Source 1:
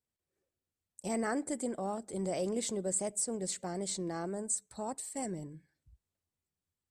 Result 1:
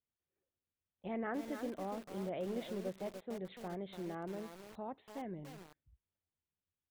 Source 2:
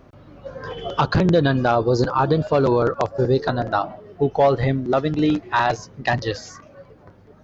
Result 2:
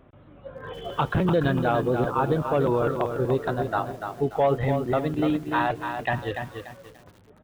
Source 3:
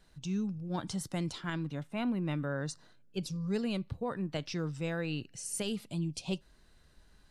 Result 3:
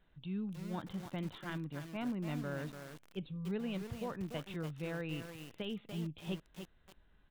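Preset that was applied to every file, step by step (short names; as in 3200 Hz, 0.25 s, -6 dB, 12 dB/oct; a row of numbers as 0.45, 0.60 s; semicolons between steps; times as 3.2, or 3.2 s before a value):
downsampling 8000 Hz; lo-fi delay 0.291 s, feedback 35%, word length 7-bit, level -6.5 dB; gain -5.5 dB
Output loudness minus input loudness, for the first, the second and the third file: -7.5, -5.0, -5.5 LU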